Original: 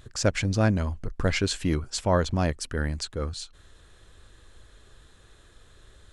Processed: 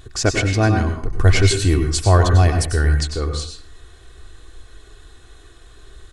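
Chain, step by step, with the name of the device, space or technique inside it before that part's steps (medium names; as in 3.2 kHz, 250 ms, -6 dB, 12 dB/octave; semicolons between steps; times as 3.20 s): microphone above a desk (comb 2.7 ms, depth 58%; reverberation RT60 0.45 s, pre-delay 91 ms, DRR 4.5 dB); 1.11–3.00 s: fifteen-band graphic EQ 100 Hz +10 dB, 250 Hz -4 dB, 10 kHz +6 dB; trim +5.5 dB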